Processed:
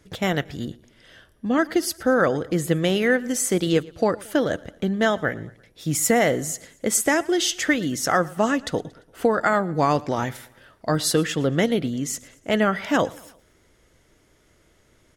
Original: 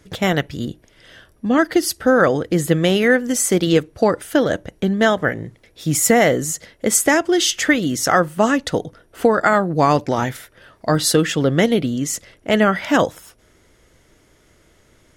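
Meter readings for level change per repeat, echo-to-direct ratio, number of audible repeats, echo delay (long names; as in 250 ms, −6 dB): −6.0 dB, −21.5 dB, 3, 115 ms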